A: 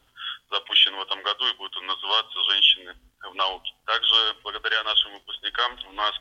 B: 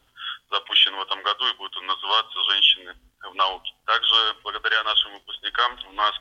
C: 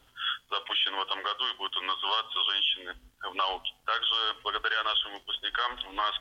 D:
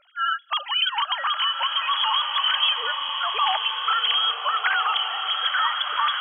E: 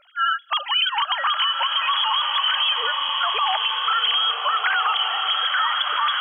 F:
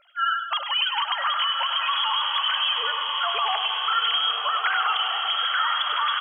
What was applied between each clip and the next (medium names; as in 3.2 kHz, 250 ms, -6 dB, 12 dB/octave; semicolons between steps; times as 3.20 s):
dynamic bell 1.2 kHz, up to +5 dB, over -39 dBFS, Q 1.5
in parallel at -2.5 dB: compression, threshold -26 dBFS, peak gain reduction 13.5 dB; on the sum: peak limiter -15 dBFS, peak gain reduction 11.5 dB; trim -3.5 dB
formants replaced by sine waves; in parallel at -2 dB: compressor with a negative ratio -31 dBFS, ratio -0.5; on the sum: swelling reverb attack 1510 ms, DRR 3.5 dB; trim +2.5 dB
peak limiter -16.5 dBFS, peak gain reduction 6.5 dB; trim +4 dB
feedback comb 690 Hz, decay 0.44 s, mix 70%; feedback delay 100 ms, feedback 49%, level -8.5 dB; trim +6.5 dB